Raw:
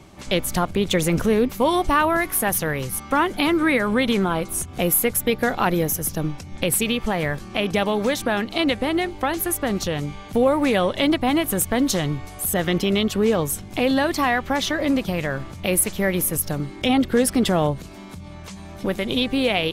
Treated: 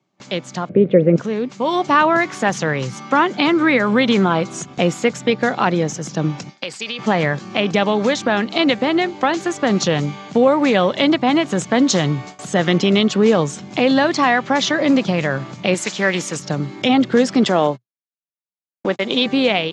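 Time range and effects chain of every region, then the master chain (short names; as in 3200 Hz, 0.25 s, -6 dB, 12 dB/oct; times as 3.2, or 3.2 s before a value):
0.69–1.16 LPF 2300 Hz 24 dB/oct + resonant low shelf 690 Hz +9 dB, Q 3
6.49–6.99 HPF 990 Hz 6 dB/oct + bell 4800 Hz +11.5 dB 0.21 oct + compressor 2:1, threshold -34 dBFS
15.74–16.39 tilt +2.5 dB/oct + Doppler distortion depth 0.11 ms
17.45–19.26 gate -28 dBFS, range -58 dB + HPF 250 Hz
whole clip: Chebyshev band-pass 120–7200 Hz, order 5; gate with hold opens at -31 dBFS; AGC; gain -1 dB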